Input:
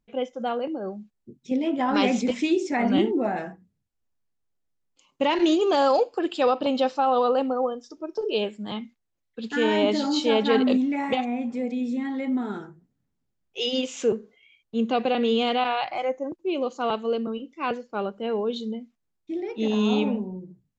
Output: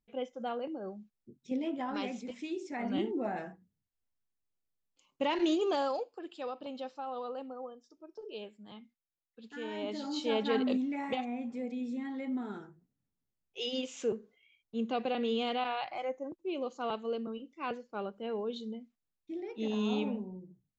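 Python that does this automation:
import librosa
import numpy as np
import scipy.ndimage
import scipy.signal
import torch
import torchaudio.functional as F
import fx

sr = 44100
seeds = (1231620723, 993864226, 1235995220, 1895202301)

y = fx.gain(x, sr, db=fx.line((1.64, -9.0), (2.21, -18.0), (3.35, -8.5), (5.69, -8.5), (6.12, -18.0), (9.69, -18.0), (10.33, -9.5)))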